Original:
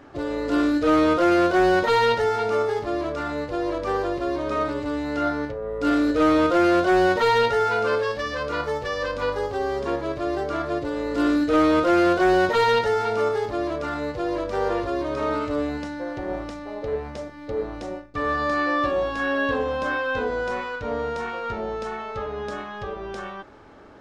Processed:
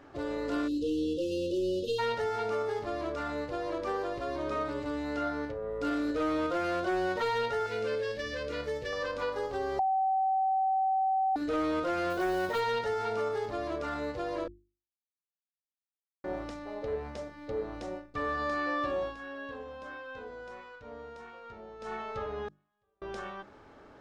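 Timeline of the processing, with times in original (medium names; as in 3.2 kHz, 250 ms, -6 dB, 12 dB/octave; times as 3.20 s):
0.68–1.99 s: spectral selection erased 570–2600 Hz
7.66–8.93 s: high-order bell 1 kHz -11 dB 1.2 oct
9.79–11.36 s: bleep 766 Hz -11.5 dBFS
12.10–12.60 s: companded quantiser 6-bit
14.48–16.24 s: mute
19.03–21.92 s: dip -12 dB, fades 0.13 s
22.48–23.02 s: inverted gate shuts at -28 dBFS, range -40 dB
whole clip: hum notches 50/100/150/200/250/300/350 Hz; compression 3:1, threshold -23 dBFS; trim -6 dB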